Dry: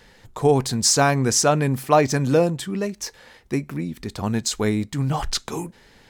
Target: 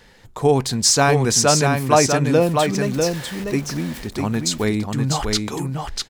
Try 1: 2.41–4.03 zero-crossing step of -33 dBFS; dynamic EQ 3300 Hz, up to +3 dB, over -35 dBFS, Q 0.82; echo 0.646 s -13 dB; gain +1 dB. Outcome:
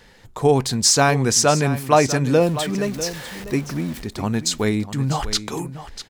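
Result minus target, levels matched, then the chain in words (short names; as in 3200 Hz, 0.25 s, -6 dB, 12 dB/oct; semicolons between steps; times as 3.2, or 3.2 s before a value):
echo-to-direct -8.5 dB
2.41–4.03 zero-crossing step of -33 dBFS; dynamic EQ 3300 Hz, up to +3 dB, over -35 dBFS, Q 0.82; echo 0.646 s -4.5 dB; gain +1 dB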